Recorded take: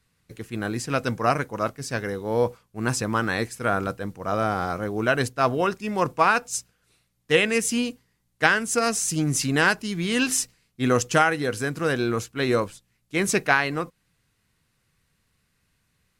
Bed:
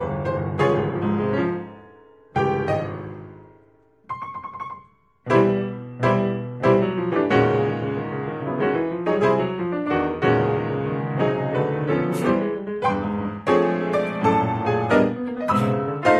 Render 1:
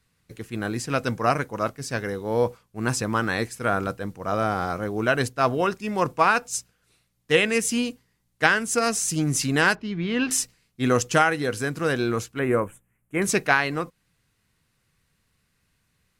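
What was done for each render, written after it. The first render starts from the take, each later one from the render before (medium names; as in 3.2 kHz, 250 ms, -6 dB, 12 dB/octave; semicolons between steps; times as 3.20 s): 9.75–10.31 s: distance through air 280 m; 12.39–13.22 s: Butterworth band-stop 4.6 kHz, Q 0.71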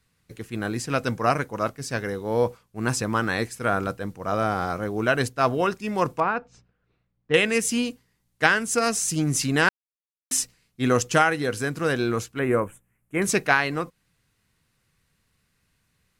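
6.20–7.34 s: tape spacing loss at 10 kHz 45 dB; 9.69–10.31 s: mute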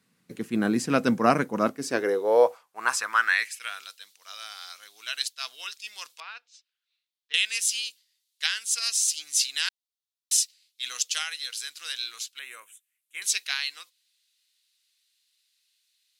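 high-pass sweep 210 Hz -> 3.7 kHz, 1.61–3.87 s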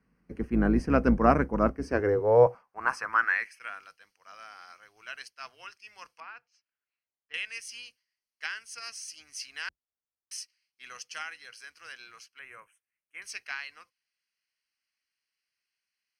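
octave divider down 2 oct, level -4 dB; boxcar filter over 12 samples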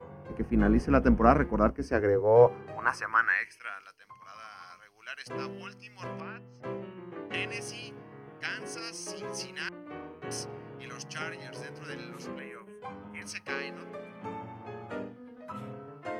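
add bed -21 dB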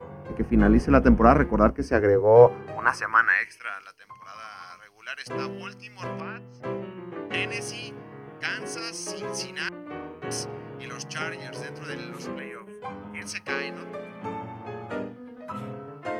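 trim +5.5 dB; peak limiter -3 dBFS, peak gain reduction 2 dB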